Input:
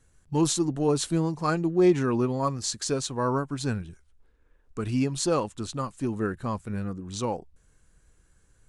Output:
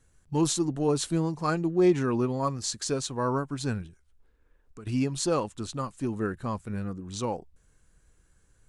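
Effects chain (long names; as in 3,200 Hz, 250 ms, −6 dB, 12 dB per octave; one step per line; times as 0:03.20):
0:03.87–0:04.87: downward compressor 2 to 1, threshold −51 dBFS, peak gain reduction 13 dB
level −1.5 dB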